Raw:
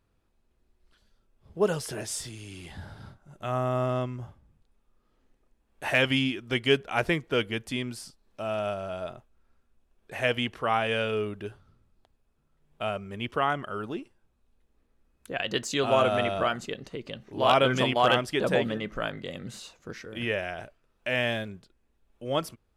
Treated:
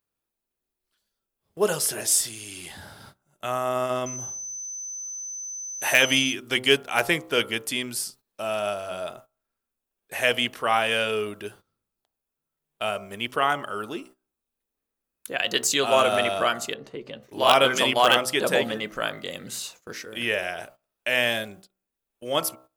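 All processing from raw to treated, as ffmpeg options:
ffmpeg -i in.wav -filter_complex "[0:a]asettb=1/sr,asplit=3[link_01][link_02][link_03];[link_01]atrim=end=4.064[link_04];[link_02]atrim=start=4.06:end=6.33,asetpts=PTS-STARTPTS,afade=type=in:duration=0.004:curve=qsin,afade=type=out:start_time=2.266:duration=0.004:curve=qsin,aeval=exprs='val(0)+0.00631*sin(2*PI*6100*n/s)':channel_layout=same,highshelf=frequency=11000:gain=3.5[link_05];[link_03]atrim=start=6.326[link_06];[link_04][link_05]acrossfade=duration=0.004:curve1=hsin:curve2=qsin[link_07];[link_07][link_06]acrossfade=duration=0.004:curve1=qsin:curve2=hsin,asettb=1/sr,asplit=3[link_08][link_09][link_10];[link_08]atrim=end=16.744[link_11];[link_09]atrim=start=16.74:end=17.23,asetpts=PTS-STARTPTS,afade=type=in:duration=0.004:curve=qsin,afade=type=out:start_time=0.486:duration=0.004:curve=qsin,lowpass=frequency=1200:poles=1,asplit=2[link_12][link_13];[link_13]adelay=14,volume=-10dB[link_14];[link_12][link_14]amix=inputs=2:normalize=0,atrim=end_sample=21609[link_15];[link_10]atrim=start=17.226[link_16];[link_11][link_15]acrossfade=duration=0.004:curve1=hsin:curve2=qsin[link_17];[link_17][link_16]acrossfade=duration=0.004:curve1=qsin:curve2=hsin,aemphasis=mode=production:type=bsi,bandreject=frequency=63.95:width_type=h:width=4,bandreject=frequency=127.9:width_type=h:width=4,bandreject=frequency=191.85:width_type=h:width=4,bandreject=frequency=255.8:width_type=h:width=4,bandreject=frequency=319.75:width_type=h:width=4,bandreject=frequency=383.7:width_type=h:width=4,bandreject=frequency=447.65:width_type=h:width=4,bandreject=frequency=511.6:width_type=h:width=4,bandreject=frequency=575.55:width_type=h:width=4,bandreject=frequency=639.5:width_type=h:width=4,bandreject=frequency=703.45:width_type=h:width=4,bandreject=frequency=767.4:width_type=h:width=4,bandreject=frequency=831.35:width_type=h:width=4,bandreject=frequency=895.3:width_type=h:width=4,bandreject=frequency=959.25:width_type=h:width=4,bandreject=frequency=1023.2:width_type=h:width=4,bandreject=frequency=1087.15:width_type=h:width=4,bandreject=frequency=1151.1:width_type=h:width=4,bandreject=frequency=1215.05:width_type=h:width=4,bandreject=frequency=1279:width_type=h:width=4,bandreject=frequency=1342.95:width_type=h:width=4,bandreject=frequency=1406.9:width_type=h:width=4,agate=range=-15dB:threshold=-51dB:ratio=16:detection=peak,volume=4dB" out.wav

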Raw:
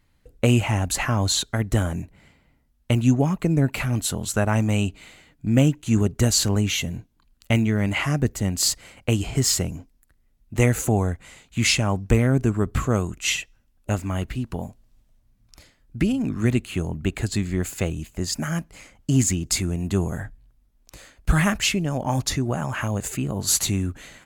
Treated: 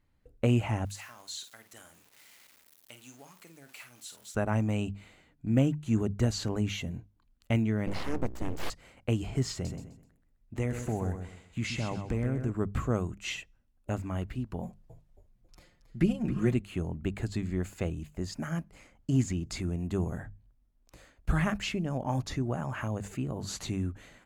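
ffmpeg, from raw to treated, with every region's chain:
ffmpeg -i in.wav -filter_complex "[0:a]asettb=1/sr,asplit=3[link_01][link_02][link_03];[link_01]atrim=end=0.854[link_04];[link_02]atrim=start=0.85:end=4.35,asetpts=PTS-STARTPTS,afade=type=in:duration=0.004:curve=qsin,afade=type=out:start_time=3.496:duration=0.004:curve=qsin,aeval=exprs='val(0)+0.5*0.0299*sgn(val(0))':channel_layout=same,aderivative,asplit=2[link_05][link_06];[link_06]adelay=49,volume=-9.5dB[link_07];[link_05][link_07]amix=inputs=2:normalize=0,atrim=end_sample=154350[link_08];[link_03]atrim=start=4.346[link_09];[link_04][link_08]acrossfade=duration=0.004:curve1=hsin:curve2=qsin[link_10];[link_10][link_09]acrossfade=duration=0.004:curve1=qsin:curve2=hsin,asettb=1/sr,asplit=3[link_11][link_12][link_13];[link_11]atrim=end=7.874[link_14];[link_12]atrim=start=7.87:end=8.7,asetpts=PTS-STARTPTS,afade=type=in:duration=0.004:curve=qsin,afade=type=out:start_time=0.826:duration=0.004:curve=qsin,aeval=exprs='val(0)+0.0251*(sin(2*PI*60*n/s)+sin(2*PI*2*60*n/s)/2+sin(2*PI*3*60*n/s)/3+sin(2*PI*4*60*n/s)/4+sin(2*PI*5*60*n/s)/5)':channel_layout=same,aeval=exprs='abs(val(0))':channel_layout=same[link_15];[link_13]atrim=start=8.696[link_16];[link_14][link_15]acrossfade=duration=0.004:curve1=hsin:curve2=qsin[link_17];[link_17][link_16]acrossfade=duration=0.004:curve1=qsin:curve2=hsin,asettb=1/sr,asplit=3[link_18][link_19][link_20];[link_18]atrim=end=9.524[link_21];[link_19]atrim=start=9.52:end=12.52,asetpts=PTS-STARTPTS,afade=type=in:duration=0.004:curve=qsin,afade=type=out:start_time=2.996:duration=0.004:curve=qsin,equalizer=frequency=13000:width_type=o:width=0.38:gain=-4,acompressor=threshold=-21dB:ratio=2.5:attack=3.2:release=140:knee=1:detection=peak,aecho=1:1:128|256|384|512:0.398|0.119|0.0358|0.0107,atrim=end_sample=132300[link_22];[link_20]atrim=start=12.516[link_23];[link_21][link_22]acrossfade=duration=0.004:curve1=hsin:curve2=qsin[link_24];[link_24][link_23]acrossfade=duration=0.004:curve1=qsin:curve2=hsin,asettb=1/sr,asplit=3[link_25][link_26][link_27];[link_25]atrim=end=14.624[link_28];[link_26]atrim=start=14.62:end=16.54,asetpts=PTS-STARTPTS,afade=type=in:duration=0.004:curve=qsin,afade=type=out:start_time=1.916:duration=0.004:curve=qsin,aecho=1:1:5.6:0.85,atrim=end_sample=84672,asplit=6[link_29][link_30][link_31][link_32][link_33][link_34];[link_30]adelay=273,afreqshift=-70,volume=-12dB[link_35];[link_31]adelay=546,afreqshift=-140,volume=-18.9dB[link_36];[link_32]adelay=819,afreqshift=-210,volume=-25.9dB[link_37];[link_33]adelay=1092,afreqshift=-280,volume=-32.8dB[link_38];[link_34]adelay=1365,afreqshift=-350,volume=-39.7dB[link_39];[link_29][link_35][link_36][link_37][link_38][link_39]amix=inputs=6:normalize=0,atrim=end_sample=84672[link_40];[link_27]atrim=start=16.536[link_41];[link_28][link_40]acrossfade=duration=0.004:curve1=hsin:curve2=qsin[link_42];[link_42][link_41]acrossfade=duration=0.004:curve1=qsin:curve2=hsin,bandreject=frequency=50:width_type=h:width=6,bandreject=frequency=100:width_type=h:width=6,bandreject=frequency=150:width_type=h:width=6,bandreject=frequency=200:width_type=h:width=6,acrossover=split=6700[link_43][link_44];[link_44]acompressor=threshold=-38dB:ratio=4:attack=1:release=60[link_45];[link_43][link_45]amix=inputs=2:normalize=0,highshelf=frequency=2200:gain=-8.5,volume=-6.5dB" out.wav

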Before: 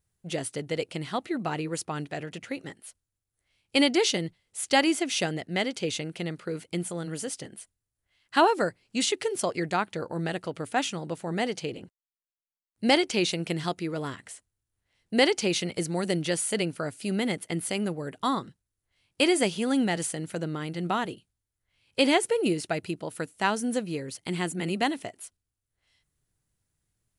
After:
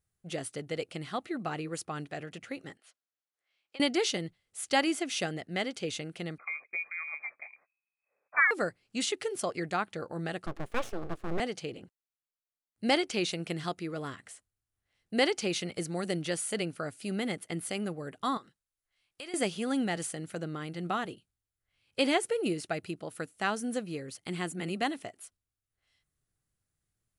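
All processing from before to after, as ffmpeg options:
ffmpeg -i in.wav -filter_complex "[0:a]asettb=1/sr,asplit=3[link_01][link_02][link_03];[link_01]atrim=end=2.774[link_04];[link_02]atrim=start=2.77:end=3.8,asetpts=PTS-STARTPTS,afade=type=in:duration=0.004:curve=qsin,afade=type=out:start_time=1.026:duration=0.004:curve=qsin,acompressor=threshold=-36dB:ratio=10:attack=3.2:release=140:knee=1:detection=peak,highpass=500,lowpass=5200[link_05];[link_03]atrim=start=3.796[link_06];[link_04][link_05]acrossfade=duration=0.004:curve1=hsin:curve2=qsin[link_07];[link_07][link_06]acrossfade=duration=0.004:curve1=qsin:curve2=hsin,asettb=1/sr,asplit=3[link_08][link_09][link_10];[link_08]atrim=end=6.384[link_11];[link_09]atrim=start=6.38:end=8.51,asetpts=PTS-STARTPTS,afade=type=in:duration=0.004:curve=qsin,afade=type=out:start_time=2.126:duration=0.004:curve=qsin,lowpass=frequency=2200:width_type=q:width=0.5098,lowpass=frequency=2200:width_type=q:width=0.6013,lowpass=frequency=2200:width_type=q:width=0.9,lowpass=frequency=2200:width_type=q:width=2.563,afreqshift=-2600,highpass=frequency=380:poles=1[link_12];[link_10]atrim=start=8.506[link_13];[link_11][link_12]acrossfade=duration=0.004:curve1=hsin:curve2=qsin[link_14];[link_14][link_13]acrossfade=duration=0.004:curve1=qsin:curve2=hsin,asettb=1/sr,asplit=3[link_15][link_16][link_17];[link_15]atrim=end=10.464[link_18];[link_16]atrim=start=10.46:end=11.4,asetpts=PTS-STARTPTS,afade=type=in:duration=0.004:curve=qsin,afade=type=out:start_time=0.936:duration=0.004:curve=qsin,lowpass=frequency=2300:poles=1,equalizer=frequency=190:width=0.85:gain=8.5,aeval=exprs='abs(val(0))':channel_layout=same[link_19];[link_17]atrim=start=11.396[link_20];[link_18][link_19]acrossfade=duration=0.004:curve1=hsin:curve2=qsin[link_21];[link_21][link_20]acrossfade=duration=0.004:curve1=qsin:curve2=hsin,asettb=1/sr,asplit=3[link_22][link_23][link_24];[link_22]atrim=end=18.374[link_25];[link_23]atrim=start=18.37:end=19.34,asetpts=PTS-STARTPTS,afade=type=in:duration=0.004:curve=qsin,afade=type=out:start_time=0.966:duration=0.004:curve=qsin,equalizer=frequency=110:width=0.33:gain=-12.5,acompressor=threshold=-41dB:ratio=2.5:attack=3.2:release=140:knee=1:detection=peak[link_26];[link_24]atrim=start=19.336[link_27];[link_25][link_26]acrossfade=duration=0.004:curve1=hsin:curve2=qsin[link_28];[link_28][link_27]acrossfade=duration=0.004:curve1=qsin:curve2=hsin,equalizer=frequency=1100:width_type=o:width=1.1:gain=4,bandreject=frequency=950:width=6.3,volume=-5.5dB" out.wav

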